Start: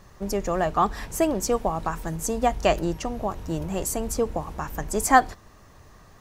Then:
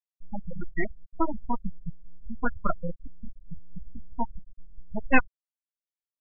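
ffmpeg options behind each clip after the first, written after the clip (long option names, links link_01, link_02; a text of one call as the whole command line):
ffmpeg -i in.wav -af "aeval=exprs='0.794*(cos(1*acos(clip(val(0)/0.794,-1,1)))-cos(1*PI/2))+0.02*(cos(8*acos(clip(val(0)/0.794,-1,1)))-cos(8*PI/2))':channel_layout=same,aeval=exprs='abs(val(0))':channel_layout=same,afftfilt=real='re*gte(hypot(re,im),0.282)':imag='im*gte(hypot(re,im),0.282)':win_size=1024:overlap=0.75" out.wav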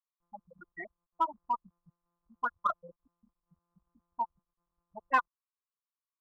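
ffmpeg -i in.wav -filter_complex "[0:a]bandpass=frequency=1100:width_type=q:width=7.8:csg=0,asplit=2[link_01][link_02];[link_02]asoftclip=type=hard:threshold=-34dB,volume=-8.5dB[link_03];[link_01][link_03]amix=inputs=2:normalize=0,volume=7dB" out.wav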